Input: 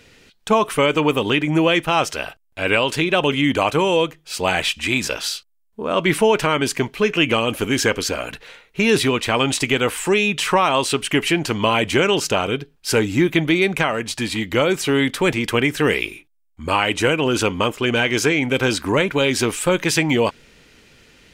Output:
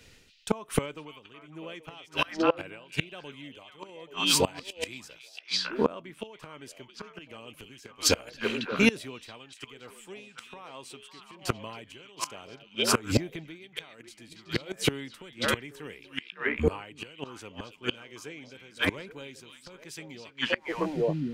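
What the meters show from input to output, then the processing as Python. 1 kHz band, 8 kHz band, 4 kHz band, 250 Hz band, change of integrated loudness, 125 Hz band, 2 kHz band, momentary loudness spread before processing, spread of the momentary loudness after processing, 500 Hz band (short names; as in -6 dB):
-15.5 dB, -8.5 dB, -10.0 dB, -13.5 dB, -11.0 dB, -12.5 dB, -13.5 dB, 7 LU, 21 LU, -14.0 dB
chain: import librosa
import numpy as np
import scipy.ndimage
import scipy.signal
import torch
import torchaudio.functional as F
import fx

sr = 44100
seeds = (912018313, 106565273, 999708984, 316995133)

y = fx.bass_treble(x, sr, bass_db=1, treble_db=3)
y = y * (1.0 - 0.68 / 2.0 + 0.68 / 2.0 * np.cos(2.0 * np.pi * 1.2 * (np.arange(len(y)) / sr)))
y = fx.echo_stepped(y, sr, ms=277, hz=3600.0, octaves=-1.4, feedback_pct=70, wet_db=-0.5)
y = fx.gate_flip(y, sr, shuts_db=-14.0, range_db=-24)
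y = fx.band_widen(y, sr, depth_pct=40)
y = y * librosa.db_to_amplitude(1.5)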